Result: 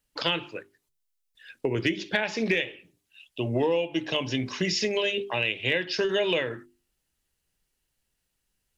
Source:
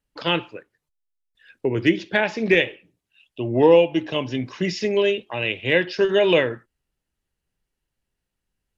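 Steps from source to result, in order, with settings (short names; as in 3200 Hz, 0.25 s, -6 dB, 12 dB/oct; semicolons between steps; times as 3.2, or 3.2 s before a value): high shelf 2800 Hz +9.5 dB; notches 50/100/150/200/250/300/350/400 Hz; compressor 5:1, threshold -23 dBFS, peak gain reduction 12.5 dB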